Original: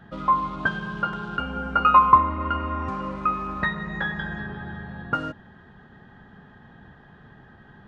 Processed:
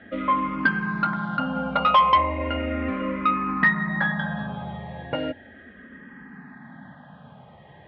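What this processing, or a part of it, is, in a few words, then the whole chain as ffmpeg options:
barber-pole phaser into a guitar amplifier: -filter_complex "[0:a]asplit=2[s0][s1];[s1]afreqshift=-0.36[s2];[s0][s2]amix=inputs=2:normalize=1,asoftclip=type=tanh:threshold=0.133,highpass=94,equalizer=f=110:t=q:w=4:g=-8,equalizer=f=260:t=q:w=4:g=7,equalizer=f=390:t=q:w=4:g=-7,equalizer=f=570:t=q:w=4:g=7,equalizer=f=1400:t=q:w=4:g=-3,equalizer=f=2100:t=q:w=4:g=9,lowpass=f=3800:w=0.5412,lowpass=f=3800:w=1.3066,volume=2"

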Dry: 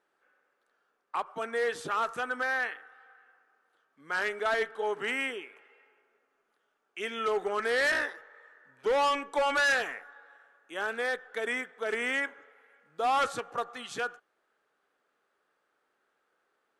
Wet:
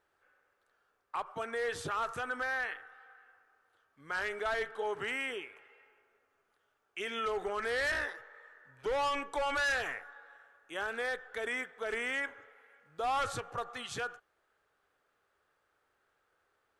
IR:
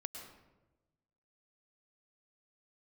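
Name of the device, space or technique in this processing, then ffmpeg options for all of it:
car stereo with a boomy subwoofer: -af "lowshelf=f=140:t=q:w=1.5:g=13,alimiter=level_in=1.41:limit=0.0631:level=0:latency=1:release=41,volume=0.708"

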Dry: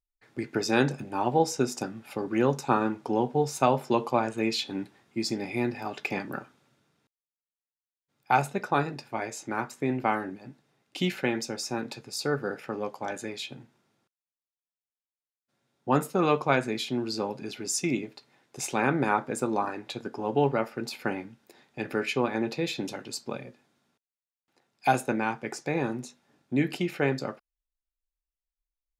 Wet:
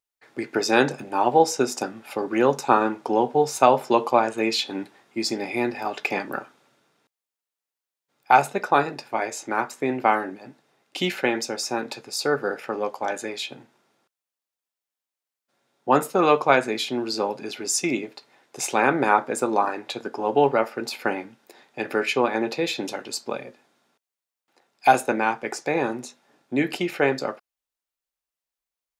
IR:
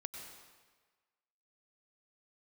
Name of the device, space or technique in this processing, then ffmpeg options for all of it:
filter by subtraction: -filter_complex "[0:a]asplit=2[s0][s1];[s1]lowpass=590,volume=-1[s2];[s0][s2]amix=inputs=2:normalize=0,volume=1.88"

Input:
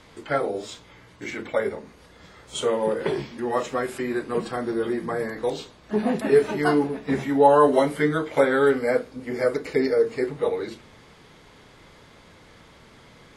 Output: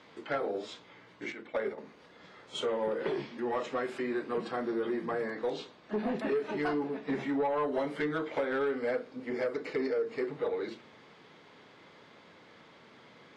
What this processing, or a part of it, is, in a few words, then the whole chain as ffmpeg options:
AM radio: -filter_complex "[0:a]asettb=1/sr,asplit=3[s0][s1][s2];[s0]atrim=end=1.324[s3];[s1]atrim=start=1.32:end=1.78,asetpts=PTS-STARTPTS,afade=t=in:d=0.004:c=qsin,afade=t=out:st=0.456:d=0.004:c=qsin,agate=range=0.398:threshold=0.0398:ratio=16:detection=peak[s4];[s2]atrim=start=1.776[s5];[s3][s4]acrossfade=d=0.004:c1=hsin:c2=qsin[s6];[s6][s5]acrossfade=d=0.004:c1=qsin:c2=hsin,highpass=190,lowpass=4400,acompressor=threshold=0.0794:ratio=4,asoftclip=type=tanh:threshold=0.106,volume=0.631"

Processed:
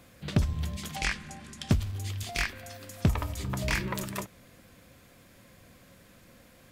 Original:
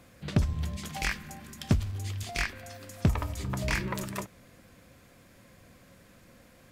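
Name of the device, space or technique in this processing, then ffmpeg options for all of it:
presence and air boost: -filter_complex "[0:a]asettb=1/sr,asplit=3[s0][s1][s2];[s0]atrim=end=0.964[s3];[s1]atrim=start=0.96:end=1.7,asetpts=PTS-STARTPTS,afade=t=in:d=0.004:c=qsin,afade=t=out:st=0.736:d=0.004:c=qsin,lowpass=f=9700:w=0.5412,lowpass=f=9700:w=1.3066[s4];[s2]atrim=start=1.696[s5];[s3][s4]acrossfade=d=0.004:c1=hsin:c2=qsin[s6];[s6][s5]acrossfade=d=0.004:c1=qsin:c2=hsin,equalizer=f=3400:t=o:w=0.77:g=2.5,highshelf=f=12000:g=6"

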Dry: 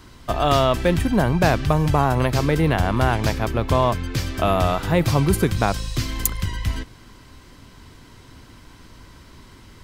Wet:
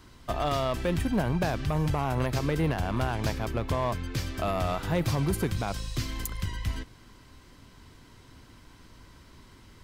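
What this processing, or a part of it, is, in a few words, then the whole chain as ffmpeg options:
limiter into clipper: -af "alimiter=limit=0.355:level=0:latency=1:release=68,asoftclip=type=hard:threshold=0.224,volume=0.447"

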